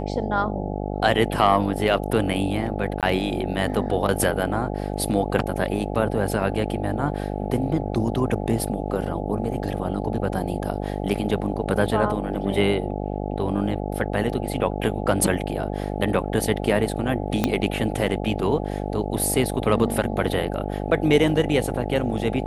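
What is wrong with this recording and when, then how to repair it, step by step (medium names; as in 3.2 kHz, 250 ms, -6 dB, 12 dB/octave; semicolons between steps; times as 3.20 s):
buzz 50 Hz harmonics 17 -28 dBFS
3.01–3.03 s: dropout 17 ms
17.44 s: pop -6 dBFS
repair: de-click; de-hum 50 Hz, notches 17; interpolate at 3.01 s, 17 ms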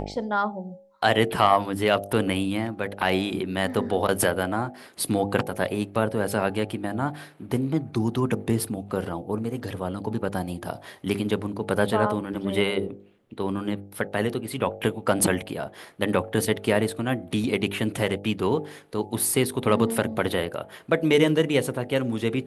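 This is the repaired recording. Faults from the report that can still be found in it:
17.44 s: pop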